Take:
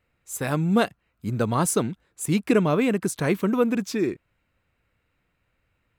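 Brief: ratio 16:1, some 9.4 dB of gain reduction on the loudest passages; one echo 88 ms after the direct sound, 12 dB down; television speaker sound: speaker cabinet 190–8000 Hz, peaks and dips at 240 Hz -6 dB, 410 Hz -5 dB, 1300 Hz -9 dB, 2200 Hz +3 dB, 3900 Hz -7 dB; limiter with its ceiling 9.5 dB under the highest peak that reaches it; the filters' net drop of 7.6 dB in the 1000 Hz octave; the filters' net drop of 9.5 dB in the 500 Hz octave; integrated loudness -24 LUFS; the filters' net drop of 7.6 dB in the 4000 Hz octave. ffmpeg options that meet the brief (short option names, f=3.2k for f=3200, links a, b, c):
-af "equalizer=f=500:t=o:g=-7.5,equalizer=f=1k:t=o:g=-3.5,equalizer=f=4k:t=o:g=-6.5,acompressor=threshold=-27dB:ratio=16,alimiter=level_in=4dB:limit=-24dB:level=0:latency=1,volume=-4dB,highpass=f=190:w=0.5412,highpass=f=190:w=1.3066,equalizer=f=240:t=q:w=4:g=-6,equalizer=f=410:t=q:w=4:g=-5,equalizer=f=1.3k:t=q:w=4:g=-9,equalizer=f=2.2k:t=q:w=4:g=3,equalizer=f=3.9k:t=q:w=4:g=-7,lowpass=f=8k:w=0.5412,lowpass=f=8k:w=1.3066,aecho=1:1:88:0.251,volume=17.5dB"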